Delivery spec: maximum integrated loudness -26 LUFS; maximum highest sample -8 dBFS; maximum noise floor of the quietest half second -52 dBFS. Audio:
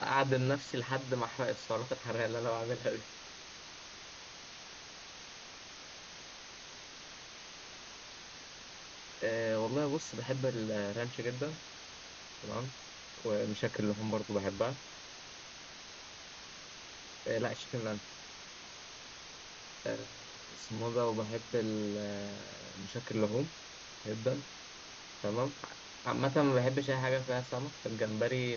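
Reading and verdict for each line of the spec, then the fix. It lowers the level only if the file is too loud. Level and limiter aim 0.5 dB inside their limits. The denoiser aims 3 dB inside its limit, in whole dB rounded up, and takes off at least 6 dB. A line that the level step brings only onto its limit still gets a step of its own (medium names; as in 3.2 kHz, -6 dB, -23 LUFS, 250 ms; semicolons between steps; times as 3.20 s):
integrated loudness -38.0 LUFS: pass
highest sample -16.5 dBFS: pass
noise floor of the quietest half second -50 dBFS: fail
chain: noise reduction 6 dB, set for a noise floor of -50 dBFS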